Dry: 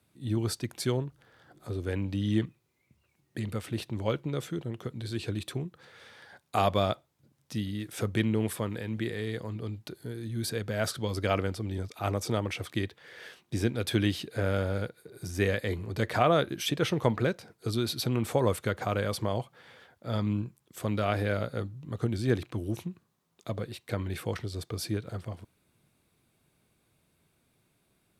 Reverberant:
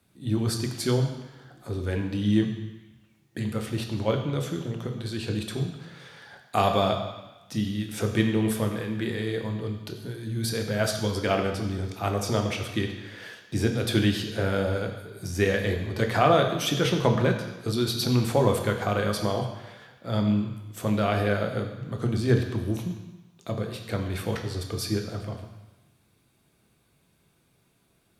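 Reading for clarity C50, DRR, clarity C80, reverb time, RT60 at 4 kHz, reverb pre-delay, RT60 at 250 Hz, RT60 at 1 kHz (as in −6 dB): 7.0 dB, 3.0 dB, 8.5 dB, 1.1 s, 1.2 s, 3 ms, 1.0 s, 1.2 s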